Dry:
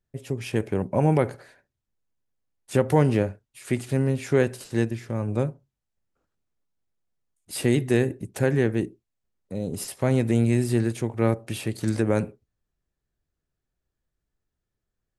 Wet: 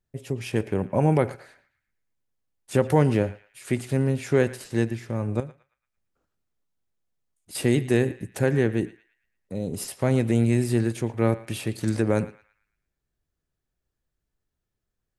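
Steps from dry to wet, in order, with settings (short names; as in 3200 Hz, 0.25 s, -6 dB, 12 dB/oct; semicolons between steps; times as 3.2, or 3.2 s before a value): 5.4–7.55 compressor 1.5:1, threshold -52 dBFS, peak gain reduction 11.5 dB; narrowing echo 0.113 s, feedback 43%, band-pass 2100 Hz, level -15 dB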